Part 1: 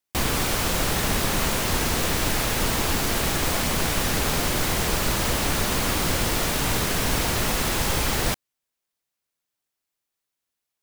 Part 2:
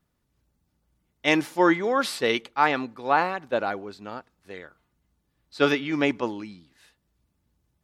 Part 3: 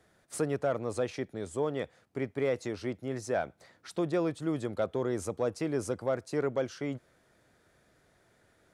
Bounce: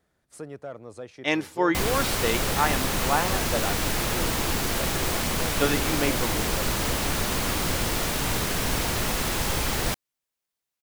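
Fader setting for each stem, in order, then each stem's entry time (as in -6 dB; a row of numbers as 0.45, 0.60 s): -2.5, -3.5, -8.0 dB; 1.60, 0.00, 0.00 s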